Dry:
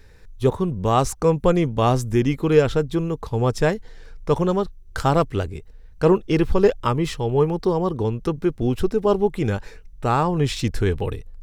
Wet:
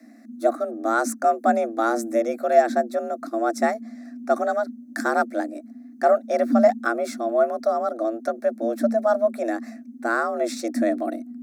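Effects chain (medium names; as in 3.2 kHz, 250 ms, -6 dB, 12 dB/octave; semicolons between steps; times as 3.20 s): static phaser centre 750 Hz, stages 6; frequency shift +220 Hz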